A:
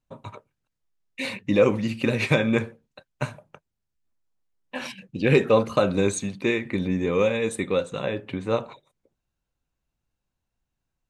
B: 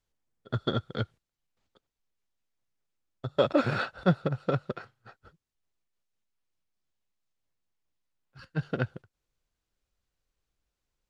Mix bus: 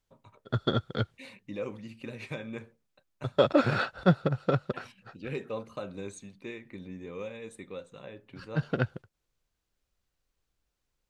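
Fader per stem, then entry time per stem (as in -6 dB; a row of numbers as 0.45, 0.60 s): -17.5, +1.5 dB; 0.00, 0.00 s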